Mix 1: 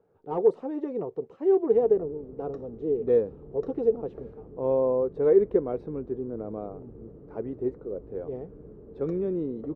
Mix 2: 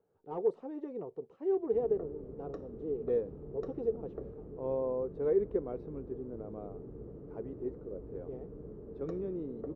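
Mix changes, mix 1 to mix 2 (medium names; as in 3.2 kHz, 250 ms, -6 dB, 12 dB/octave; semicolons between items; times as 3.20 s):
speech -10.0 dB; reverb: on, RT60 0.40 s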